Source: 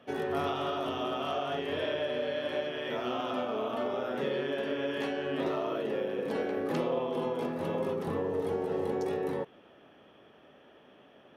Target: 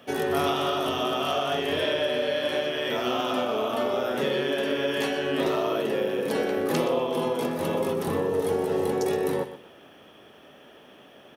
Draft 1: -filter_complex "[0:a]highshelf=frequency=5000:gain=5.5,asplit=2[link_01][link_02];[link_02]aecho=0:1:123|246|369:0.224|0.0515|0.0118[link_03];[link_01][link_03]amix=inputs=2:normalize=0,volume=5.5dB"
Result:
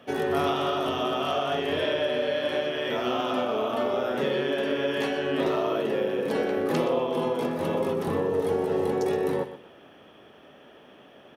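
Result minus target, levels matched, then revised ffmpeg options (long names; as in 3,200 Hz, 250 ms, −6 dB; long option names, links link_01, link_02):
8,000 Hz band −6.0 dB
-filter_complex "[0:a]highshelf=frequency=5000:gain=15,asplit=2[link_01][link_02];[link_02]aecho=0:1:123|246|369:0.224|0.0515|0.0118[link_03];[link_01][link_03]amix=inputs=2:normalize=0,volume=5.5dB"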